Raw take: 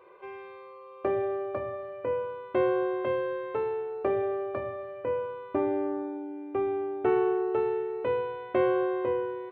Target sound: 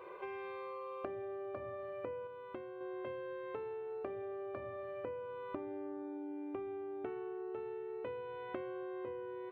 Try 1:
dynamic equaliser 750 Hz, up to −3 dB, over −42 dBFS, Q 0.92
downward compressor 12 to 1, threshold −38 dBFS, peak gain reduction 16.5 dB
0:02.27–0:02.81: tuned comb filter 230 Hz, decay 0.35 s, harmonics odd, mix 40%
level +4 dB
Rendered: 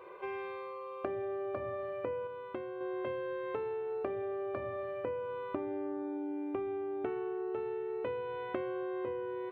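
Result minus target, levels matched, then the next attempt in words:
downward compressor: peak gain reduction −6 dB
dynamic equaliser 750 Hz, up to −3 dB, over −42 dBFS, Q 0.92
downward compressor 12 to 1, threshold −44.5 dBFS, peak gain reduction 22.5 dB
0:02.27–0:02.81: tuned comb filter 230 Hz, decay 0.35 s, harmonics odd, mix 40%
level +4 dB

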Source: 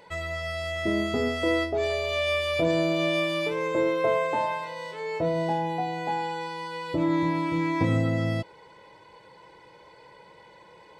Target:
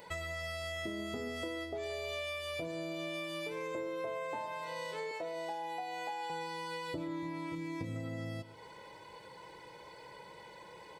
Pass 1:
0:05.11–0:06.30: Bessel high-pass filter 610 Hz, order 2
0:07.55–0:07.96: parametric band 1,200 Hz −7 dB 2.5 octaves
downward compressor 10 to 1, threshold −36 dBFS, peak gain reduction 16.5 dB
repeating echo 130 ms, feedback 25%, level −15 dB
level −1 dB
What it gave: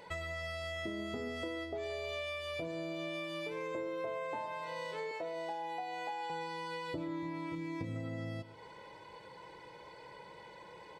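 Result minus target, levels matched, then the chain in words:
8,000 Hz band −5.0 dB
0:05.11–0:06.30: Bessel high-pass filter 610 Hz, order 2
0:07.55–0:07.96: parametric band 1,200 Hz −7 dB 2.5 octaves
downward compressor 10 to 1, threshold −36 dBFS, peak gain reduction 16.5 dB
high-shelf EQ 7,900 Hz +12 dB
repeating echo 130 ms, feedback 25%, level −15 dB
level −1 dB

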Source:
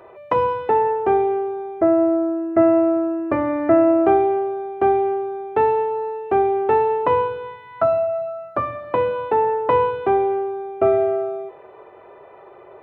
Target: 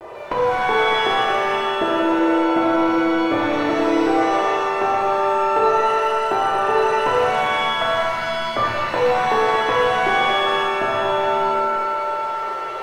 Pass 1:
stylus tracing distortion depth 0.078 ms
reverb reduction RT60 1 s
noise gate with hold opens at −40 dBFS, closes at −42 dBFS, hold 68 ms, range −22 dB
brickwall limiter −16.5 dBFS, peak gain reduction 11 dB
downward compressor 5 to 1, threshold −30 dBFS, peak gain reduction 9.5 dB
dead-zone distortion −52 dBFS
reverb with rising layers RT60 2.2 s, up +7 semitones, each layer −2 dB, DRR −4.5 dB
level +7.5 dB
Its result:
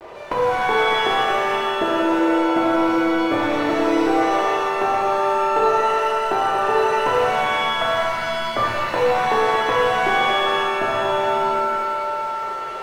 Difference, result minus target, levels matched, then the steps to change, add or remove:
dead-zone distortion: distortion +9 dB
change: dead-zone distortion −61.5 dBFS

